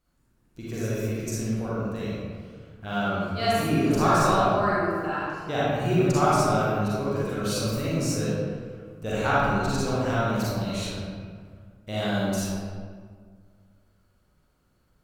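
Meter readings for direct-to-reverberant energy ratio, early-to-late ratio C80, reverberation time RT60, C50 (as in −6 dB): −9.0 dB, −2.0 dB, 1.9 s, −5.5 dB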